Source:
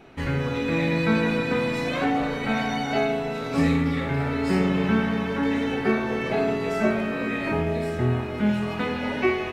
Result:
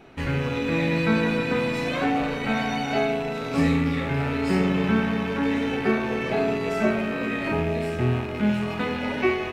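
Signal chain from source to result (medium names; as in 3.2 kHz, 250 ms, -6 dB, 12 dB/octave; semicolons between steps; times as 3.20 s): rattle on loud lows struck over -32 dBFS, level -28 dBFS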